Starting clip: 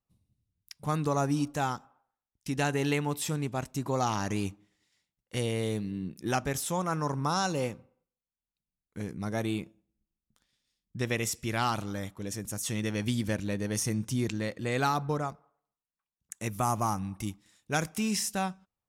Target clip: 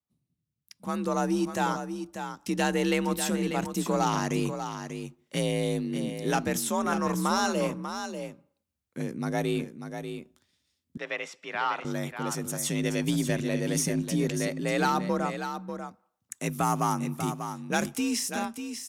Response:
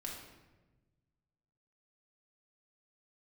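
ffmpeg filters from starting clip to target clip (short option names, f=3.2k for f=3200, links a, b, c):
-filter_complex "[0:a]dynaudnorm=f=230:g=9:m=10dB,asoftclip=type=tanh:threshold=-10.5dB,afreqshift=46,asettb=1/sr,asplit=3[a][b][c];[a]atrim=end=10.974[d];[b]atrim=start=10.97:end=11.85,asetpts=PTS-STARTPTS,afade=t=in:d=0.004:c=qsin,afade=t=out:st=0.876:d=0.004:c=qsin,highpass=680,lowpass=2.6k[e];[c]atrim=start=11.846[f];[d][e]acrossfade=d=0.004:c1=hsin:c2=qsin[g];[g][f]acrossfade=d=0.004:c1=qsin:c2=hsin,aecho=1:1:592:0.376,volume=-6dB"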